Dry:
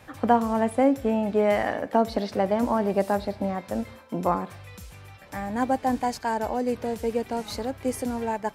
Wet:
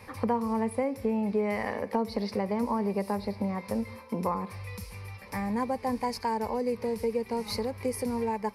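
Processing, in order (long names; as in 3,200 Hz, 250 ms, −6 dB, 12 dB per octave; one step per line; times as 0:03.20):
EQ curve with evenly spaced ripples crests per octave 0.88, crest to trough 11 dB
downward compressor 2.5 to 1, threshold −29 dBFS, peak gain reduction 11 dB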